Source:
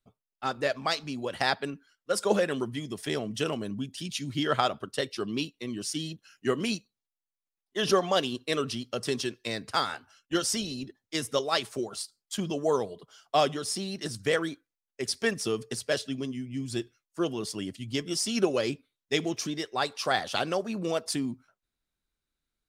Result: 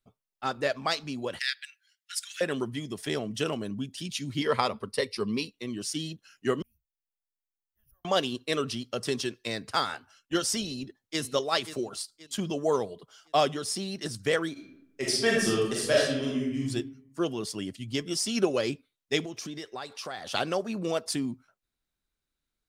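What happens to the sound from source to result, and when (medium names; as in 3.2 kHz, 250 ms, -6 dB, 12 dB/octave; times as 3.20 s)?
1.39–2.41 s: steep high-pass 1.7 kHz 48 dB/octave
4.41–5.53 s: rippled EQ curve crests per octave 0.9, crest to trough 10 dB
6.62–8.05 s: inverse Chebyshev band-stop 170–8400 Hz, stop band 50 dB
10.65–11.20 s: echo throw 530 ms, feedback 40%, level -12 dB
14.52–16.63 s: reverb throw, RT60 0.86 s, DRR -4.5 dB
19.21–20.29 s: compression 4:1, threshold -35 dBFS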